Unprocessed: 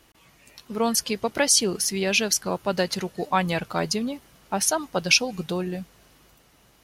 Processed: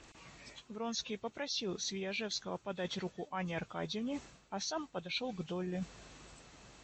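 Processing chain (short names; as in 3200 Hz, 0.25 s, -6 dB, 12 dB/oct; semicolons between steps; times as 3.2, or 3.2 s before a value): nonlinear frequency compression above 2100 Hz 1.5:1; reverse; compressor 8:1, threshold -38 dBFS, peak gain reduction 21.5 dB; reverse; gain +1.5 dB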